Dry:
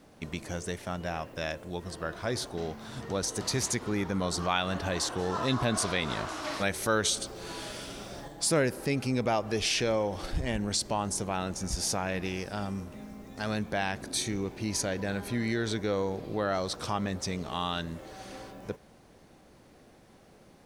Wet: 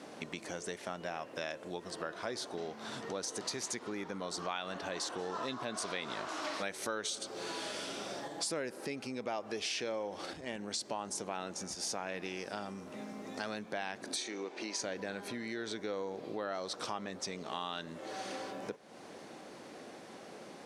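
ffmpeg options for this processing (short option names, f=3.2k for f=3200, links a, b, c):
-filter_complex "[0:a]asettb=1/sr,asplit=3[a][b][c];[a]atrim=end=14.164[d];[b]atrim=start=14.16:end=14.82,asetpts=PTS-STARTPTS,afade=t=in:d=0.004:c=qsin,afade=t=out:st=0.656:d=0.004:c=qsin,highpass=360,lowpass=7.1k[e];[c]atrim=start=14.816[f];[d][e]acrossfade=d=0.004:c1=hsin:c2=qsin[g];[g][f]acrossfade=d=0.004:c1=qsin:c2=hsin,lowpass=9k,acompressor=threshold=-47dB:ratio=4,highpass=260,volume=9dB"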